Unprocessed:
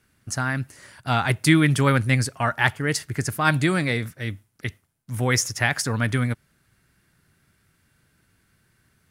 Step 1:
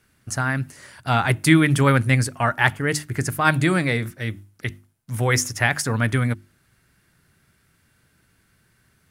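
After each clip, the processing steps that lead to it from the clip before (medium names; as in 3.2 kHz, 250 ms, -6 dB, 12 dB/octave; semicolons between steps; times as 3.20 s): hum notches 50/100/150/200/250/300/350 Hz; dynamic bell 4.8 kHz, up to -4 dB, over -41 dBFS, Q 1.1; trim +2.5 dB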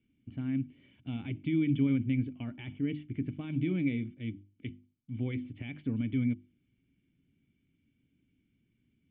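peak limiter -12.5 dBFS, peak gain reduction 11 dB; cascade formant filter i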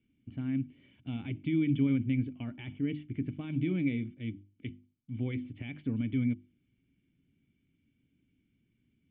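no audible change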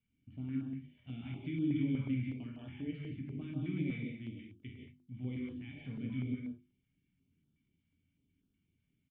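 early reflections 23 ms -6.5 dB, 48 ms -7.5 dB, 68 ms -10 dB; gated-style reverb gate 200 ms rising, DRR 0 dB; step-sequenced notch 8.2 Hz 330–2100 Hz; trim -8.5 dB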